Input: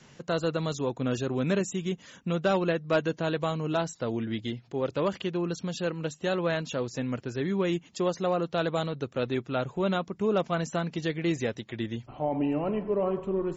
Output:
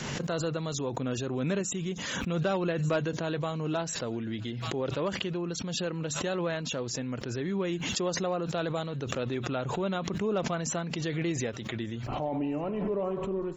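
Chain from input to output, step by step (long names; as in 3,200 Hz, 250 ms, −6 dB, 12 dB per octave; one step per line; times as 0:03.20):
delay with a high-pass on its return 1,195 ms, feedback 42%, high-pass 1,700 Hz, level −24 dB
background raised ahead of every attack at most 24 dB per second
level −4 dB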